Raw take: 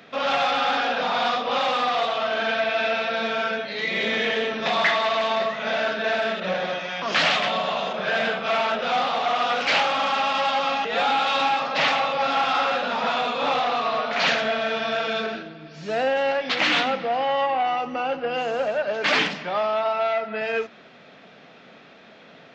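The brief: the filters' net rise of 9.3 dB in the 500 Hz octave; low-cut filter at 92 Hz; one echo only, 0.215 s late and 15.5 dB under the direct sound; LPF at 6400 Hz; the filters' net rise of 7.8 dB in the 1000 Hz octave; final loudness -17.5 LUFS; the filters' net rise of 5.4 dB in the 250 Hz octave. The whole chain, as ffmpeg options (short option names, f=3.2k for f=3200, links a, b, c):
-af "highpass=92,lowpass=6.4k,equalizer=f=250:t=o:g=4,equalizer=f=500:t=o:g=8.5,equalizer=f=1k:t=o:g=7,aecho=1:1:215:0.168,volume=-1dB"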